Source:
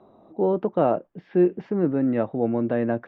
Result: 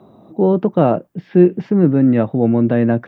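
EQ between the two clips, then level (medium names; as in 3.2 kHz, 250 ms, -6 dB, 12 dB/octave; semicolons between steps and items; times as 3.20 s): tilt EQ +3.5 dB/octave; peaking EQ 130 Hz +14.5 dB 2.6 oct; bass shelf 240 Hz +8.5 dB; +3.5 dB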